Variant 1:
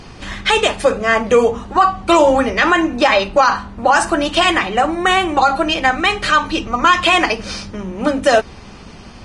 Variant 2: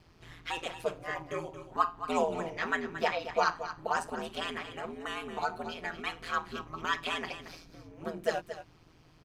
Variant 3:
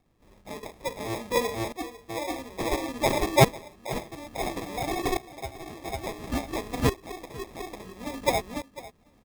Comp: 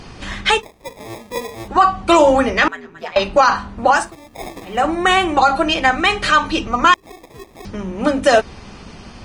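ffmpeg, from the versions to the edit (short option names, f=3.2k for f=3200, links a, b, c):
-filter_complex "[2:a]asplit=3[a][b][c];[0:a]asplit=5[d][e][f][g][h];[d]atrim=end=0.63[i];[a]atrim=start=0.53:end=1.71[j];[e]atrim=start=1.61:end=2.682[k];[1:a]atrim=start=2.678:end=3.162[l];[f]atrim=start=3.158:end=4.14[m];[b]atrim=start=3.9:end=4.86[n];[g]atrim=start=4.62:end=6.942[o];[c]atrim=start=6.938:end=7.652[p];[h]atrim=start=7.648[q];[i][j]acrossfade=d=0.1:c1=tri:c2=tri[r];[r][k]acrossfade=d=0.1:c1=tri:c2=tri[s];[s][l]acrossfade=d=0.004:c1=hsin:c2=hsin[t];[t][m]acrossfade=d=0.004:c1=hsin:c2=hsin[u];[u][n]acrossfade=d=0.24:c1=tri:c2=tri[v];[v][o]acrossfade=d=0.24:c1=tri:c2=tri[w];[w][p]acrossfade=d=0.004:c1=hsin:c2=hsin[x];[x][q]acrossfade=d=0.004:c1=hsin:c2=hsin"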